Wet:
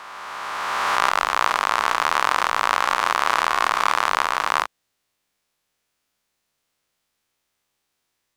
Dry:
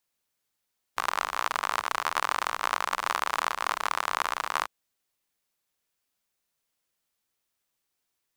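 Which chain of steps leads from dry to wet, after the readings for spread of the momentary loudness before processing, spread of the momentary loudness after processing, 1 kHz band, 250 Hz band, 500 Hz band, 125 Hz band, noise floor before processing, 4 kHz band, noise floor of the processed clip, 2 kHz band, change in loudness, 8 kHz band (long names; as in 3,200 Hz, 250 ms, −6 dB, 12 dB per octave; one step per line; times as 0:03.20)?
3 LU, 7 LU, +9.0 dB, +9.5 dB, +9.5 dB, can't be measured, −81 dBFS, +8.0 dB, −76 dBFS, +9.0 dB, +8.5 dB, +6.0 dB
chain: peak hold with a rise ahead of every peak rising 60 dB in 2.85 s
high-shelf EQ 8,700 Hz −9 dB
level +5 dB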